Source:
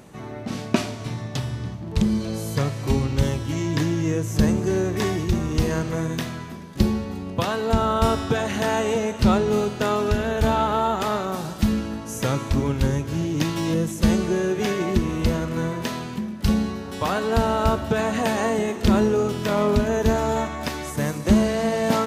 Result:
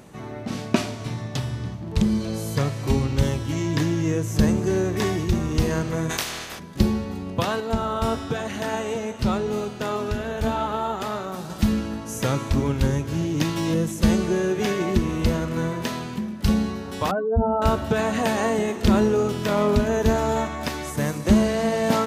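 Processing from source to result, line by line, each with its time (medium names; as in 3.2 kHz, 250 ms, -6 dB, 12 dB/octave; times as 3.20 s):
6.09–6.58 s: spectral peaks clipped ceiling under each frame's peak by 27 dB
7.60–11.50 s: flange 1 Hz, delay 2.8 ms, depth 6.3 ms, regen +75%
17.11–17.62 s: spectral contrast enhancement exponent 2.6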